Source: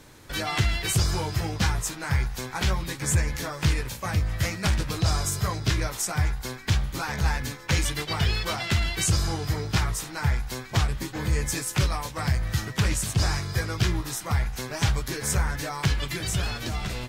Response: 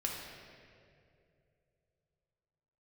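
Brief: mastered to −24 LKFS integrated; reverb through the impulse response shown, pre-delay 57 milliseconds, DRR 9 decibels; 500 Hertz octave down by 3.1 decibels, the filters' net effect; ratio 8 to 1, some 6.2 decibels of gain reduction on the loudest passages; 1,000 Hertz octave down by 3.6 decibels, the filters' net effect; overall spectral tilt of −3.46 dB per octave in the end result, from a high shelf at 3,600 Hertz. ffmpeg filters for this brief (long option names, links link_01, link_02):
-filter_complex "[0:a]equalizer=frequency=500:width_type=o:gain=-3,equalizer=frequency=1000:width_type=o:gain=-4.5,highshelf=frequency=3600:gain=6.5,acompressor=threshold=-24dB:ratio=8,asplit=2[link_01][link_02];[1:a]atrim=start_sample=2205,adelay=57[link_03];[link_02][link_03]afir=irnorm=-1:irlink=0,volume=-12dB[link_04];[link_01][link_04]amix=inputs=2:normalize=0,volume=4.5dB"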